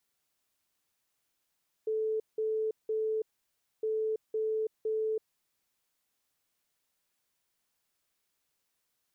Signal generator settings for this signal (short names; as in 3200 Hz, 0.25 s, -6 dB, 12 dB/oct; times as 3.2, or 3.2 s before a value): beep pattern sine 437 Hz, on 0.33 s, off 0.18 s, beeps 3, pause 0.61 s, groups 2, -28 dBFS